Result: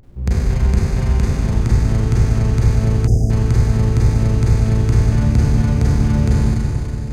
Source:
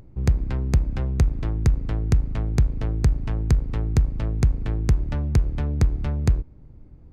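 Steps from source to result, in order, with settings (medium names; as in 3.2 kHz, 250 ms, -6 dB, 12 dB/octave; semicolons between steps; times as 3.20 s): Schroeder reverb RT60 3.6 s, combs from 32 ms, DRR -9.5 dB; time-frequency box 3.07–3.30 s, 800–4800 Hz -26 dB; trim -1.5 dB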